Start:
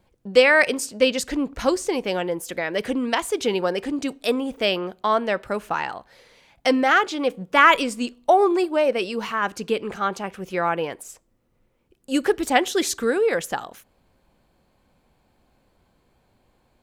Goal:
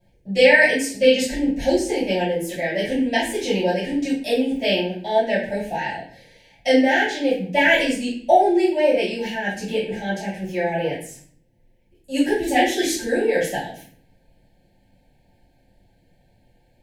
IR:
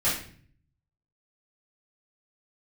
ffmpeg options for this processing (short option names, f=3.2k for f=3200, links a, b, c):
-filter_complex "[0:a]asuperstop=centerf=1200:order=12:qfactor=1.9[a];[1:a]atrim=start_sample=2205[b];[a][b]afir=irnorm=-1:irlink=0,volume=-9.5dB"